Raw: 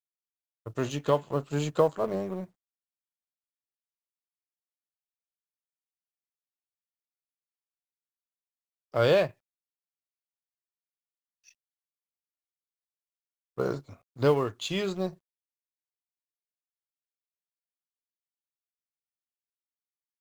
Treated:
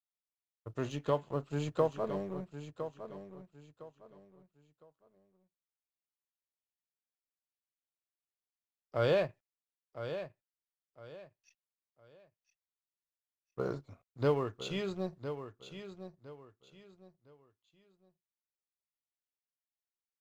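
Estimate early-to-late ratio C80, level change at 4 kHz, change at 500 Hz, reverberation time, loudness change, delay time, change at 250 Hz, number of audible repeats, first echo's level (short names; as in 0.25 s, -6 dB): none, -8.0 dB, -6.0 dB, none, -7.5 dB, 1.009 s, -5.5 dB, 3, -10.5 dB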